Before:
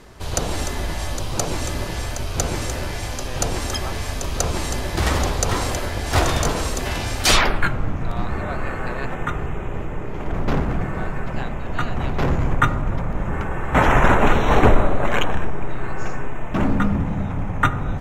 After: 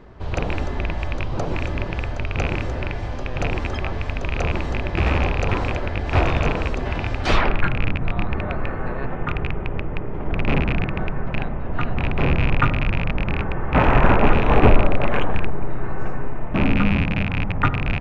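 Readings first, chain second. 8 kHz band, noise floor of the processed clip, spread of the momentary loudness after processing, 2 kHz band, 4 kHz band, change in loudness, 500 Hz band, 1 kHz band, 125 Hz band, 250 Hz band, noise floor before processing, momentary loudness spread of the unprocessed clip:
under -20 dB, -28 dBFS, 11 LU, -0.5 dB, -6.5 dB, -0.5 dB, -0.5 dB, -2.0 dB, +1.5 dB, +0.5 dB, -28 dBFS, 12 LU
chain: rattle on loud lows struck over -22 dBFS, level -7 dBFS; tape spacing loss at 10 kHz 34 dB; trim +1.5 dB

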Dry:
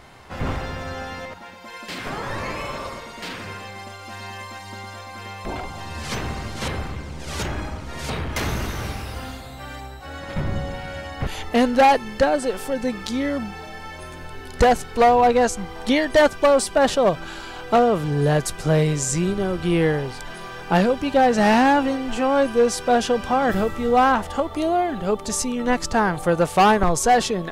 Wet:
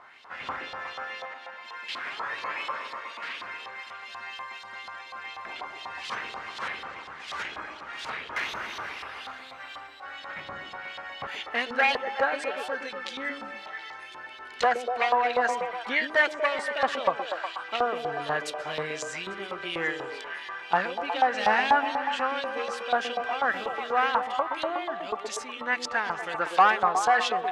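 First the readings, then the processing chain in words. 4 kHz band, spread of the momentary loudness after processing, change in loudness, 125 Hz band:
-4.0 dB, 16 LU, -8.0 dB, -25.0 dB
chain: LFO band-pass saw up 4.1 Hz 1–3.8 kHz; repeats whose band climbs or falls 121 ms, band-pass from 330 Hz, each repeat 0.7 oct, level -1.5 dB; trim +3 dB

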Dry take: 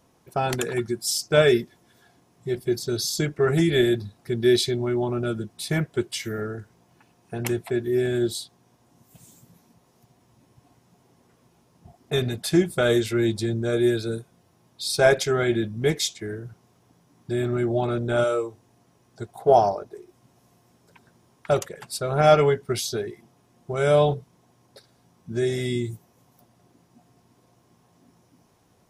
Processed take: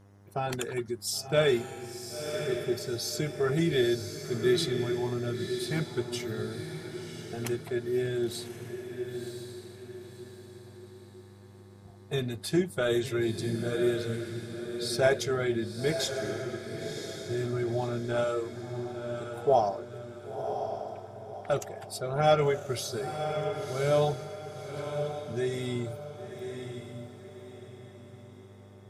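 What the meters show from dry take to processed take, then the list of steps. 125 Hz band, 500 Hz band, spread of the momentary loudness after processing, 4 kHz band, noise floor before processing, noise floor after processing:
-5.5 dB, -6.0 dB, 19 LU, -5.5 dB, -63 dBFS, -51 dBFS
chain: coarse spectral quantiser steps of 15 dB; mains buzz 100 Hz, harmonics 21, -50 dBFS -7 dB/octave; echo that smears into a reverb 1042 ms, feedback 41%, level -7 dB; trim -6.5 dB

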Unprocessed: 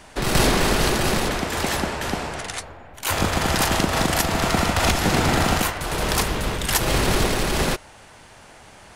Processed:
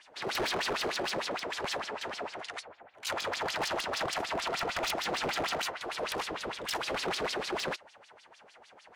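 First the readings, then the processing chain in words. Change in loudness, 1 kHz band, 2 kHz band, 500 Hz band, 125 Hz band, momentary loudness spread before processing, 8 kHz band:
-12.0 dB, -10.5 dB, -10.5 dB, -10.5 dB, -25.5 dB, 8 LU, -15.5 dB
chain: LFO band-pass sine 6.6 Hz 420–5100 Hz; wavefolder -23.5 dBFS; trim -2 dB

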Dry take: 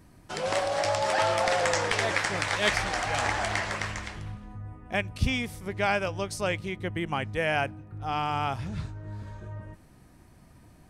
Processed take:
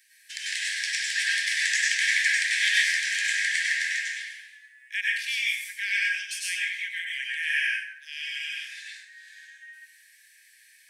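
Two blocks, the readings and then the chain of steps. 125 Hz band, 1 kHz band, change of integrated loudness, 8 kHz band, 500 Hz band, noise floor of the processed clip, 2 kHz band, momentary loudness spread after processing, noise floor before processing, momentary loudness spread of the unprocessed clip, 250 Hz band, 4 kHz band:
under -40 dB, under -35 dB, +3.0 dB, +6.0 dB, under -40 dB, -57 dBFS, +7.0 dB, 14 LU, -55 dBFS, 16 LU, under -40 dB, +5.5 dB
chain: Chebyshev high-pass 1.6 kHz, order 10; in parallel at -1 dB: compression, threshold -46 dBFS, peak gain reduction 22 dB; on the sum: plate-style reverb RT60 0.88 s, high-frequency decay 0.55×, pre-delay 85 ms, DRR -5.5 dB

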